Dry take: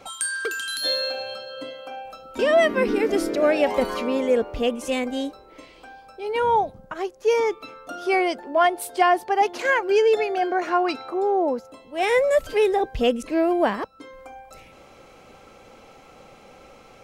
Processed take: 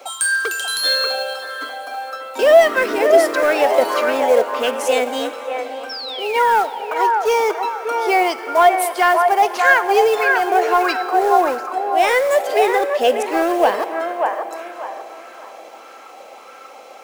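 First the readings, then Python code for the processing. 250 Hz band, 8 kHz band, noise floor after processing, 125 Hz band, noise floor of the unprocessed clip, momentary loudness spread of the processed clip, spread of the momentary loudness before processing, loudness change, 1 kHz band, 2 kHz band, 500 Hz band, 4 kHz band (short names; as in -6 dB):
-0.5 dB, +7.5 dB, -40 dBFS, n/a, -50 dBFS, 14 LU, 15 LU, +5.5 dB, +8.5 dB, +8.5 dB, +5.0 dB, +6.5 dB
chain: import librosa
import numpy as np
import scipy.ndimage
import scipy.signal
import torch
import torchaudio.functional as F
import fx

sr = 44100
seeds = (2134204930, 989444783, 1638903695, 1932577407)

p1 = scipy.signal.sosfilt(scipy.signal.butter(4, 280.0, 'highpass', fs=sr, output='sos'), x)
p2 = fx.tilt_eq(p1, sr, slope=1.5)
p3 = fx.rider(p2, sr, range_db=3, speed_s=2.0)
p4 = p2 + (p3 * librosa.db_to_amplitude(1.0))
p5 = fx.quant_float(p4, sr, bits=2)
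p6 = fx.spec_paint(p5, sr, seeds[0], shape='fall', start_s=5.89, length_s=0.75, low_hz=1300.0, high_hz=5600.0, level_db=-27.0)
p7 = fx.rev_plate(p6, sr, seeds[1], rt60_s=4.9, hf_ratio=0.9, predelay_ms=0, drr_db=14.0)
p8 = 10.0 ** (-6.0 / 20.0) * np.tanh(p7 / 10.0 ** (-6.0 / 20.0))
p9 = p8 + fx.echo_wet_bandpass(p8, sr, ms=588, feedback_pct=30, hz=990.0, wet_db=-3, dry=0)
p10 = fx.bell_lfo(p9, sr, hz=1.6, low_hz=620.0, high_hz=1500.0, db=8)
y = p10 * librosa.db_to_amplitude(-3.0)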